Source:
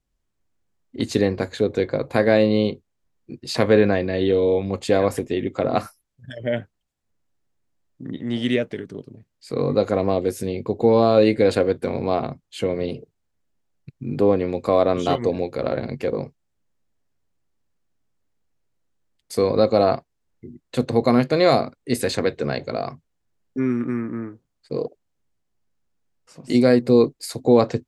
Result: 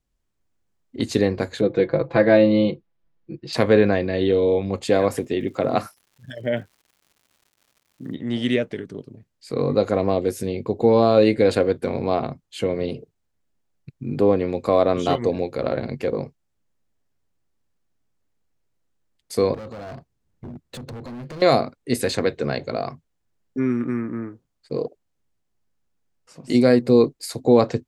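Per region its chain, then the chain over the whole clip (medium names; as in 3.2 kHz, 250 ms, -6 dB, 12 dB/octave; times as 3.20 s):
1.61–3.53 s: distance through air 200 m + comb 6 ms, depth 84%
4.89–8.14 s: high-pass 87 Hz + crackle 220 per s -47 dBFS
19.54–21.42 s: peaking EQ 110 Hz +11 dB 2.7 oct + compression 8:1, threshold -25 dBFS + hard clipper -32.5 dBFS
whole clip: none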